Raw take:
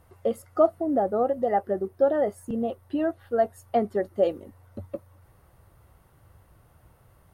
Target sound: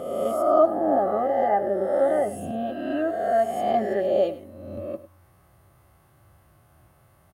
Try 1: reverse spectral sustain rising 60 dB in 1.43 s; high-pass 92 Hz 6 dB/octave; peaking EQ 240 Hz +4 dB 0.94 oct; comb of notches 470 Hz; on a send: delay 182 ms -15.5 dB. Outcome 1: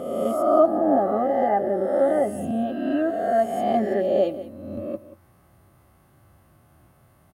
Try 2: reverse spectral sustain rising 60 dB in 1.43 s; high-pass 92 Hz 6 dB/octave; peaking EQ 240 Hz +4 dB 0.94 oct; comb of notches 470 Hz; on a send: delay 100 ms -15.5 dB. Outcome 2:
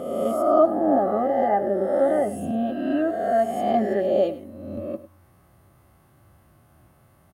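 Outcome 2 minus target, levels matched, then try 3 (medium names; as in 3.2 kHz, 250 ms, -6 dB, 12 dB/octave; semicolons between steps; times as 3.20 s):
250 Hz band +4.0 dB
reverse spectral sustain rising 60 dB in 1.43 s; high-pass 92 Hz 6 dB/octave; peaking EQ 240 Hz -2.5 dB 0.94 oct; comb of notches 470 Hz; on a send: delay 100 ms -15.5 dB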